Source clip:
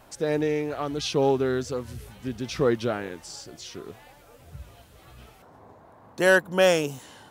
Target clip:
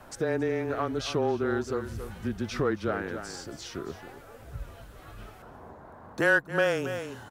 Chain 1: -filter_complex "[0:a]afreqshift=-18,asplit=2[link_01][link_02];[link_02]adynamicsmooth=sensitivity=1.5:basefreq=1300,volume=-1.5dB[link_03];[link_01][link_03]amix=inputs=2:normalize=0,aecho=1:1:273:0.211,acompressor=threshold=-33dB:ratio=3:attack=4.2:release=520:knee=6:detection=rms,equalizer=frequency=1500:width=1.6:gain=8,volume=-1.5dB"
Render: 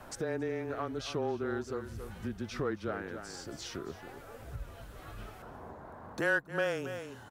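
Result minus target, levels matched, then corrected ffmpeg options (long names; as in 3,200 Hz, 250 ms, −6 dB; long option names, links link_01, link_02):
downward compressor: peak gain reduction +6.5 dB
-filter_complex "[0:a]afreqshift=-18,asplit=2[link_01][link_02];[link_02]adynamicsmooth=sensitivity=1.5:basefreq=1300,volume=-1.5dB[link_03];[link_01][link_03]amix=inputs=2:normalize=0,aecho=1:1:273:0.211,acompressor=threshold=-23dB:ratio=3:attack=4.2:release=520:knee=6:detection=rms,equalizer=frequency=1500:width=1.6:gain=8,volume=-1.5dB"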